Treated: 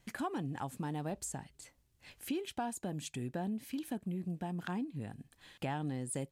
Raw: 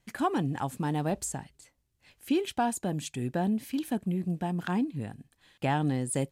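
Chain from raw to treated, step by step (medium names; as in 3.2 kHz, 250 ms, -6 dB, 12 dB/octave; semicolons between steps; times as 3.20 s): compression 2:1, threshold -49 dBFS, peak gain reduction 14 dB; trim +3.5 dB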